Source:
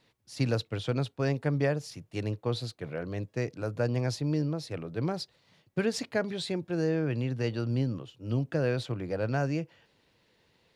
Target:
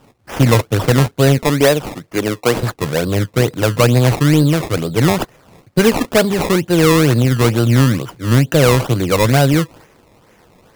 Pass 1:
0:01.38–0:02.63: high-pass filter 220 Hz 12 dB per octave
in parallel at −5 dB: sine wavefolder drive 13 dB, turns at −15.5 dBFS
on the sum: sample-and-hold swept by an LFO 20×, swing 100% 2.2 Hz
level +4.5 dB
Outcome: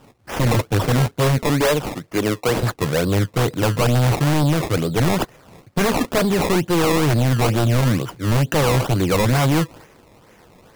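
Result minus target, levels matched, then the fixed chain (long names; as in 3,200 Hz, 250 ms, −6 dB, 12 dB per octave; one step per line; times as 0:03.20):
sine wavefolder: distortion +18 dB
0:01.38–0:02.63: high-pass filter 220 Hz 12 dB per octave
in parallel at −5 dB: sine wavefolder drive 13 dB, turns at −6.5 dBFS
on the sum: sample-and-hold swept by an LFO 20×, swing 100% 2.2 Hz
level +4.5 dB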